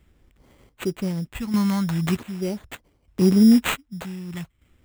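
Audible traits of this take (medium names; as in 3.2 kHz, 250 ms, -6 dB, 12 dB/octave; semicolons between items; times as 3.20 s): phasing stages 2, 0.42 Hz, lowest notch 420–3200 Hz; chopped level 0.65 Hz, depth 65%, duty 45%; aliases and images of a low sample rate 5.3 kHz, jitter 0%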